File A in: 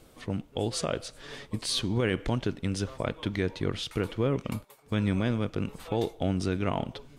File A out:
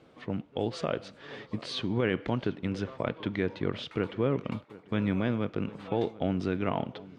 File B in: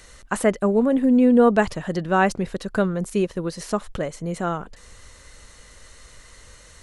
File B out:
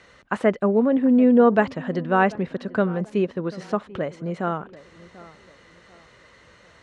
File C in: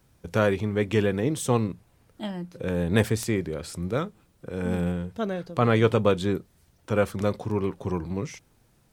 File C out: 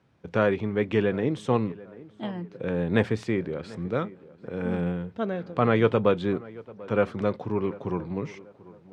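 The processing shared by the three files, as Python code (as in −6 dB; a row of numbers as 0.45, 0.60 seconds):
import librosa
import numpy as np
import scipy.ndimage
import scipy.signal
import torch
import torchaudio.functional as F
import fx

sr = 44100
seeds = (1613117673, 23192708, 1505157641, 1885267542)

y = fx.bandpass_edges(x, sr, low_hz=120.0, high_hz=3000.0)
y = fx.echo_tape(y, sr, ms=740, feedback_pct=41, wet_db=-18, lp_hz=1800.0, drive_db=11.0, wow_cents=7)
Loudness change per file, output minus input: −1.5, 0.0, −1.0 LU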